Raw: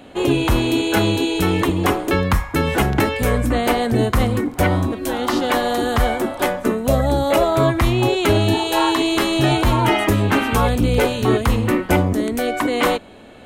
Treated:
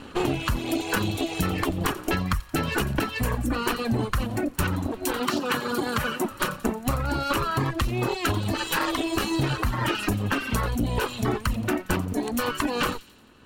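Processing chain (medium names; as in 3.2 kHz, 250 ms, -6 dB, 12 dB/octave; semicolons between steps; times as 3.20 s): comb filter that takes the minimum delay 0.71 ms; reverb removal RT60 1.8 s; 5.20–6.25 s: high-pass 130 Hz 12 dB/octave; compression, threshold -24 dBFS, peak gain reduction 11 dB; on a send: feedback echo behind a high-pass 88 ms, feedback 56%, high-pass 3.2 kHz, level -14.5 dB; on the sum: trim +2 dB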